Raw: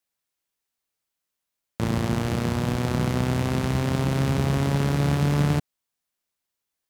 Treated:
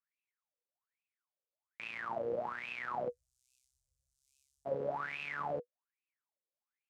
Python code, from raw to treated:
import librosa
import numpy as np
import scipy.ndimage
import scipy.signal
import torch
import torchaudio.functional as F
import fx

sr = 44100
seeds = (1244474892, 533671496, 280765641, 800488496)

y = fx.cheby2_bandstop(x, sr, low_hz=190.0, high_hz=1900.0, order=4, stop_db=70, at=(3.08, 4.65), fade=0.02)
y = fx.wah_lfo(y, sr, hz=1.2, low_hz=480.0, high_hz=2600.0, q=17.0)
y = F.gain(torch.from_numpy(y), 7.5).numpy()